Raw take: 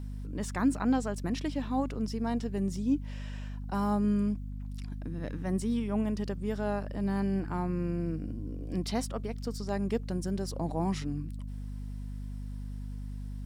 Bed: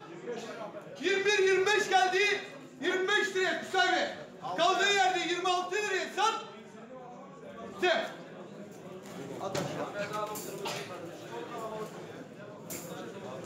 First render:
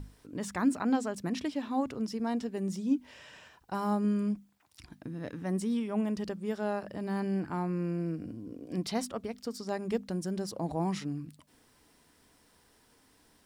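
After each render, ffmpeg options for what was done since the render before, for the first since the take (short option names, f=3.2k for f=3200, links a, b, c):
-af "bandreject=f=50:t=h:w=6,bandreject=f=100:t=h:w=6,bandreject=f=150:t=h:w=6,bandreject=f=200:t=h:w=6,bandreject=f=250:t=h:w=6"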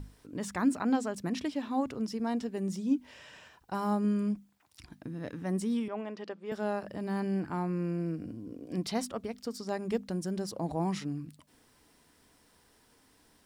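-filter_complex "[0:a]asettb=1/sr,asplit=3[a][b][c];[a]atrim=end=5.884[d];[b]atrim=start=5.88:end=6.52,asetpts=PTS-STARTPTS,afade=t=in:d=0.004:c=qsin,afade=t=out:st=0.636:d=0.004:c=qsin,highpass=400,lowpass=3.6k[e];[c]atrim=start=6.516[f];[d][e]acrossfade=d=0.004:c1=hsin:c2=qsin[g];[g][f]acrossfade=d=0.004:c1=qsin:c2=hsin"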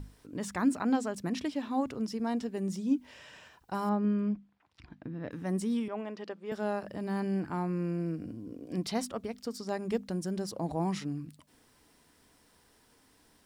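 -filter_complex "[0:a]asettb=1/sr,asplit=3[a][b][c];[a]atrim=end=3.894[d];[b]atrim=start=3.89:end=5.31,asetpts=PTS-STARTPTS,afade=t=in:d=0.004:c=qsin,afade=t=out:st=1.416:d=0.004:c=qsin,lowpass=2.9k[e];[c]atrim=start=5.306[f];[d][e]acrossfade=d=0.004:c1=hsin:c2=qsin[g];[g][f]acrossfade=d=0.004:c1=qsin:c2=hsin"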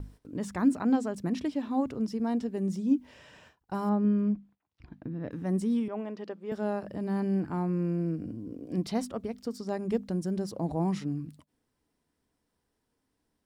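-af "agate=range=-15dB:threshold=-55dB:ratio=16:detection=peak,tiltshelf=f=740:g=4"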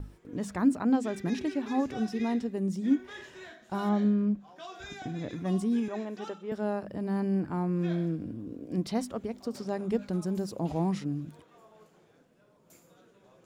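-filter_complex "[1:a]volume=-18dB[a];[0:a][a]amix=inputs=2:normalize=0"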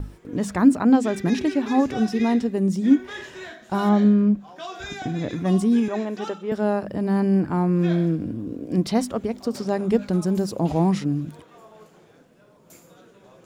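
-af "volume=9dB"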